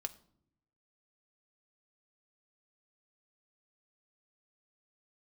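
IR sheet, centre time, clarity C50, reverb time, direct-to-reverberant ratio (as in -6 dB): 3 ms, 18.0 dB, not exponential, 7.5 dB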